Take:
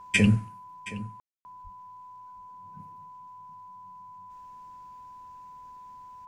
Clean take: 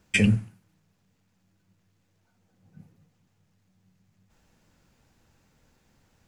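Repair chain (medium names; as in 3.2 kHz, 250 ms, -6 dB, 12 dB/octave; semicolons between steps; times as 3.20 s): band-stop 1 kHz, Q 30; de-plosive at 1.63 s; room tone fill 1.20–1.45 s; inverse comb 721 ms -16.5 dB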